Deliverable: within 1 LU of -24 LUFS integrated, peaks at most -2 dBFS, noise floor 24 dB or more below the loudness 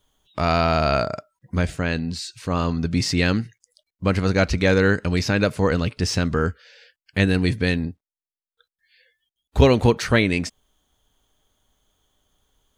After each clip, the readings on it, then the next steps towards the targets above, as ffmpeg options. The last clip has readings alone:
loudness -21.5 LUFS; peak level -1.0 dBFS; loudness target -24.0 LUFS
-> -af "volume=0.75"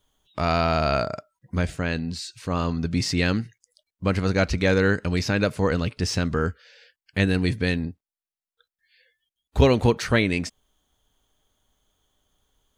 loudness -24.0 LUFS; peak level -3.5 dBFS; noise floor -94 dBFS

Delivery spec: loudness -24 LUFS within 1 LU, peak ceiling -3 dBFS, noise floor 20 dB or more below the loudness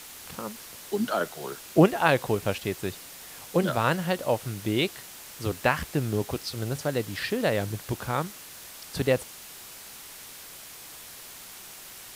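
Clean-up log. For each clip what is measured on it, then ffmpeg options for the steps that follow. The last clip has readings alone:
noise floor -45 dBFS; noise floor target -48 dBFS; loudness -28.0 LUFS; peak level -5.5 dBFS; loudness target -24.0 LUFS
-> -af "afftdn=nr=6:nf=-45"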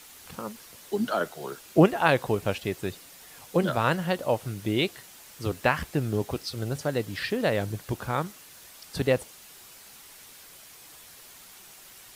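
noise floor -50 dBFS; loudness -28.0 LUFS; peak level -6.0 dBFS; loudness target -24.0 LUFS
-> -af "volume=1.58,alimiter=limit=0.708:level=0:latency=1"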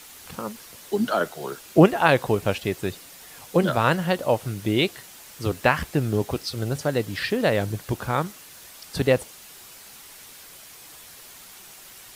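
loudness -24.0 LUFS; peak level -3.0 dBFS; noise floor -46 dBFS

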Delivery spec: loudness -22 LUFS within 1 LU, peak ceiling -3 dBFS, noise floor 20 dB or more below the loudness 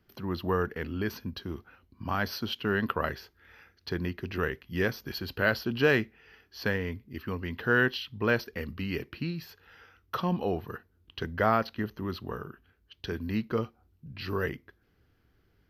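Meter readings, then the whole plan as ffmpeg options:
loudness -31.5 LUFS; peak level -9.5 dBFS; loudness target -22.0 LUFS
-> -af "volume=2.99,alimiter=limit=0.708:level=0:latency=1"

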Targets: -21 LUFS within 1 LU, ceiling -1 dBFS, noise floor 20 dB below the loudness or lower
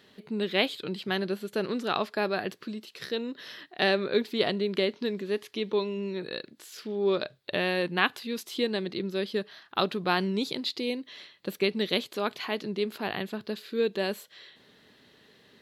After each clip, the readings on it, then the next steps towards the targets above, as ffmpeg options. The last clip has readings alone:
loudness -30.0 LUFS; peak level -7.5 dBFS; loudness target -21.0 LUFS
-> -af "volume=2.82,alimiter=limit=0.891:level=0:latency=1"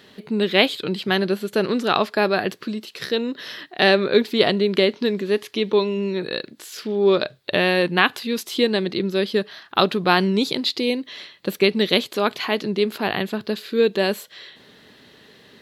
loudness -21.0 LUFS; peak level -1.0 dBFS; noise floor -51 dBFS

